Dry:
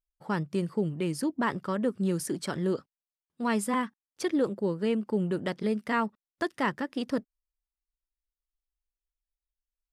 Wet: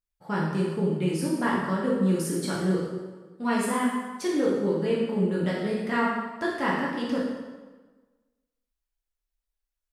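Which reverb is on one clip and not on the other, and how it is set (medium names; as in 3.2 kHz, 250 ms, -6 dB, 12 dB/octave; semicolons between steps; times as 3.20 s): plate-style reverb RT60 1.3 s, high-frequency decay 0.8×, DRR -5.5 dB; trim -3 dB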